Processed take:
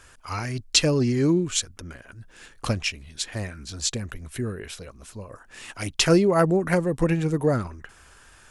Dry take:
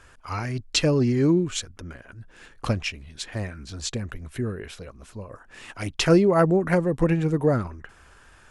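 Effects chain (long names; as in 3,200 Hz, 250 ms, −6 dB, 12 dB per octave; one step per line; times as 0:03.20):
high-shelf EQ 3,900 Hz +9.5 dB
level −1 dB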